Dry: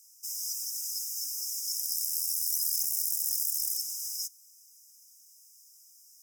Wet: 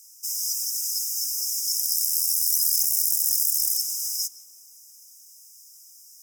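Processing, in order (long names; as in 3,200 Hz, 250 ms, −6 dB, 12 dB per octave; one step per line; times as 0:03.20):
tape delay 165 ms, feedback 87%, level −9.5 dB, low-pass 1,800 Hz
level +7.5 dB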